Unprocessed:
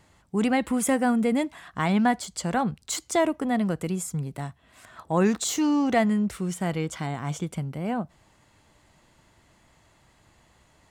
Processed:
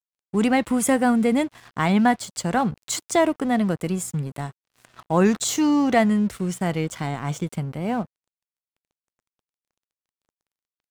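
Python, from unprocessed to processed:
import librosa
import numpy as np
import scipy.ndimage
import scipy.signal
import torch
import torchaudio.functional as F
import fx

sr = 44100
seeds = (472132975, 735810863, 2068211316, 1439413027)

y = fx.dmg_buzz(x, sr, base_hz=120.0, harmonics=5, level_db=-56.0, tilt_db=-8, odd_only=False)
y = np.sign(y) * np.maximum(np.abs(y) - 10.0 ** (-46.5 / 20.0), 0.0)
y = F.gain(torch.from_numpy(y), 4.0).numpy()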